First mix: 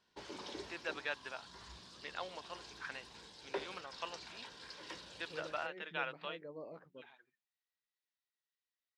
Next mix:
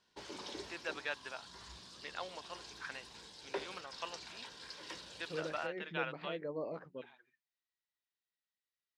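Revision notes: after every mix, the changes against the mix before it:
second voice +8.0 dB
background: add high-shelf EQ 5,000 Hz +5.5 dB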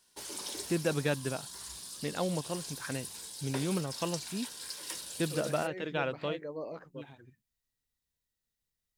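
first voice: remove high-pass filter 1,100 Hz 12 dB per octave
master: remove high-frequency loss of the air 180 metres

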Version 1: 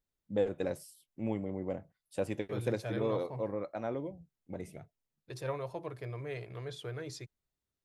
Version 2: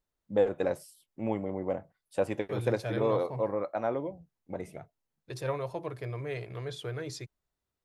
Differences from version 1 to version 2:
first voice: add parametric band 930 Hz +8.5 dB 2.3 octaves
second voice +4.0 dB

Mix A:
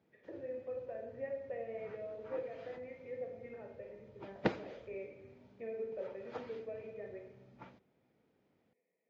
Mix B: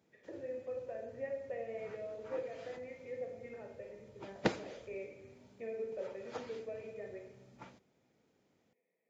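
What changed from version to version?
master: remove high-frequency loss of the air 200 metres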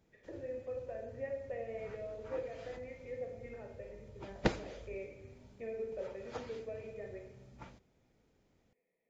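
master: remove high-pass filter 150 Hz 12 dB per octave

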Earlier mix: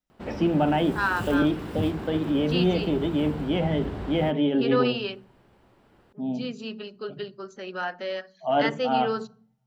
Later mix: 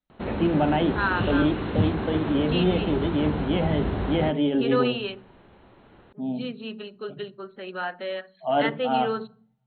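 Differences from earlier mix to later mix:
background +6.5 dB
master: add linear-phase brick-wall low-pass 4,300 Hz

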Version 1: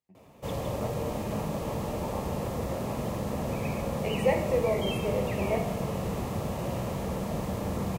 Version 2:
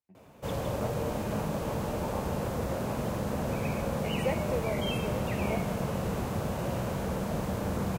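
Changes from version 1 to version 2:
second voice: send off
master: remove notch filter 1,500 Hz, Q 5.9

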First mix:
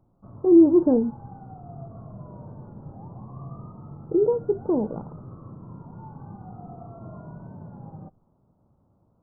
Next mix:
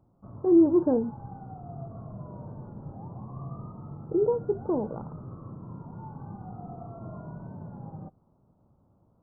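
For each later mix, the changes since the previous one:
speech: add spectral tilt +3 dB per octave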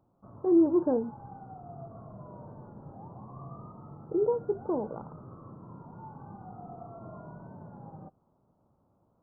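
master: add low-shelf EQ 250 Hz −9 dB

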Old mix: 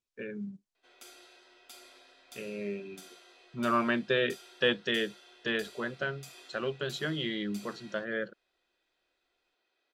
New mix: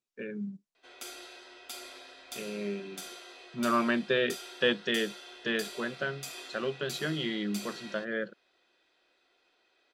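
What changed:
speech: add low shelf with overshoot 120 Hz −9 dB, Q 1.5
background +8.5 dB

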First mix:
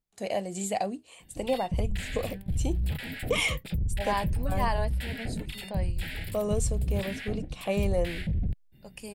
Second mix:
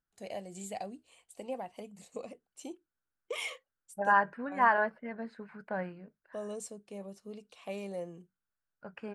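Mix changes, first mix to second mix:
first voice −10.5 dB
second voice: add low-pass with resonance 1,500 Hz, resonance Q 6.8
background: muted

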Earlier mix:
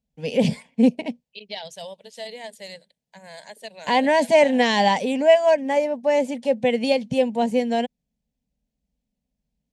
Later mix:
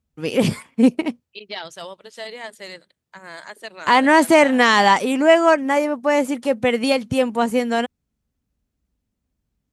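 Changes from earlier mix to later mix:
first voice: remove high-frequency loss of the air 70 metres
master: remove phaser with its sweep stopped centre 340 Hz, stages 6

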